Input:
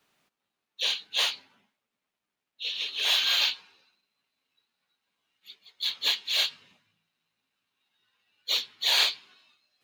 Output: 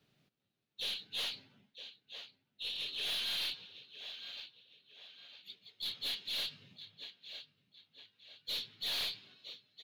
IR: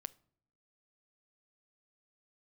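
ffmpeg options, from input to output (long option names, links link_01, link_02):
-filter_complex "[0:a]equalizer=frequency=125:width_type=o:width=1:gain=12,equalizer=frequency=1000:width_type=o:width=1:gain=-11,equalizer=frequency=2000:width_type=o:width=1:gain=-3,equalizer=frequency=4000:width_type=o:width=1:gain=5,equalizer=frequency=8000:width_type=o:width=1:gain=-5,asplit=2[link_01][link_02];[link_02]adelay=958,lowpass=frequency=4400:poles=1,volume=-17dB,asplit=2[link_03][link_04];[link_04]adelay=958,lowpass=frequency=4400:poles=1,volume=0.44,asplit=2[link_05][link_06];[link_06]adelay=958,lowpass=frequency=4400:poles=1,volume=0.44,asplit=2[link_07][link_08];[link_08]adelay=958,lowpass=frequency=4400:poles=1,volume=0.44[link_09];[link_03][link_05][link_07][link_09]amix=inputs=4:normalize=0[link_10];[link_01][link_10]amix=inputs=2:normalize=0,aeval=exprs='(tanh(17.8*val(0)+0.1)-tanh(0.1))/17.8':channel_layout=same,highshelf=frequency=2800:gain=-9,asplit=2[link_11][link_12];[link_12]alimiter=level_in=11.5dB:limit=-24dB:level=0:latency=1:release=143,volume=-11.5dB,volume=1.5dB[link_13];[link_11][link_13]amix=inputs=2:normalize=0,acrusher=bits=9:mode=log:mix=0:aa=0.000001,volume=-6dB"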